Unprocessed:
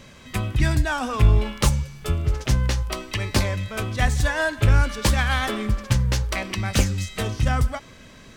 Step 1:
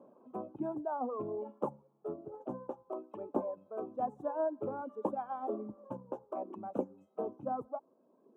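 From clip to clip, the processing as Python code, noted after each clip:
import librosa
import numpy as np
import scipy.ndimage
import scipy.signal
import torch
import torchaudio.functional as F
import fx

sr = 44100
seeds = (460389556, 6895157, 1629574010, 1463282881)

y = scipy.signal.sosfilt(scipy.signal.cheby2(4, 40, 1800.0, 'lowpass', fs=sr, output='sos'), x)
y = fx.dereverb_blind(y, sr, rt60_s=1.7)
y = scipy.signal.sosfilt(scipy.signal.butter(4, 270.0, 'highpass', fs=sr, output='sos'), y)
y = y * librosa.db_to_amplitude(-4.5)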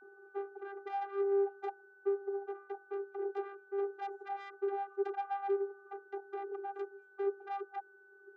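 y = fx.tube_stage(x, sr, drive_db=39.0, bias=0.55)
y = fx.vocoder(y, sr, bands=32, carrier='saw', carrier_hz=397.0)
y = y + 10.0 ** (-68.0 / 20.0) * np.sin(2.0 * np.pi * 1500.0 * np.arange(len(y)) / sr)
y = y * librosa.db_to_amplitude(8.5)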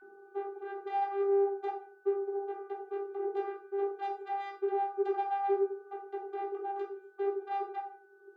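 y = fx.room_shoebox(x, sr, seeds[0], volume_m3=470.0, walls='furnished', distance_m=3.3)
y = y * librosa.db_to_amplitude(-1.5)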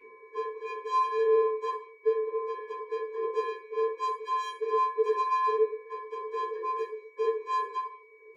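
y = fx.partial_stretch(x, sr, pct=123)
y = y * librosa.db_to_amplitude(6.0)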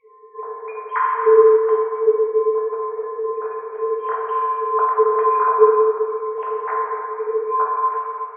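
y = fx.sine_speech(x, sr)
y = y + 10.0 ** (-12.0 / 20.0) * np.pad(y, (int(274 * sr / 1000.0), 0))[:len(y)]
y = fx.rev_plate(y, sr, seeds[1], rt60_s=2.3, hf_ratio=0.6, predelay_ms=0, drr_db=-5.0)
y = y * librosa.db_to_amplitude(4.5)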